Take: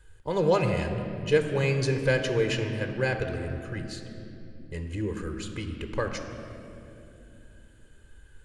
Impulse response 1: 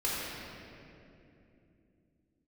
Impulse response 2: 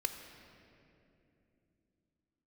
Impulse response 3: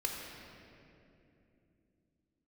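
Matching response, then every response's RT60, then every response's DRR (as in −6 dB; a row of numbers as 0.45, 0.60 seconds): 2; 2.8, 2.8, 2.8 seconds; −8.5, 6.0, −1.0 decibels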